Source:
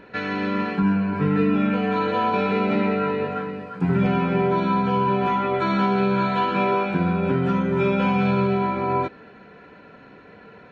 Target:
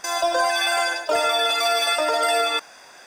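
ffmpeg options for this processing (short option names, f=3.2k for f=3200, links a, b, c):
-af "acrusher=bits=7:mode=log:mix=0:aa=0.000001,asetrate=154350,aresample=44100"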